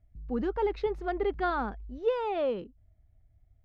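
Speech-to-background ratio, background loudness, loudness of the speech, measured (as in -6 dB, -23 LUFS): 15.5 dB, -47.0 LUFS, -31.5 LUFS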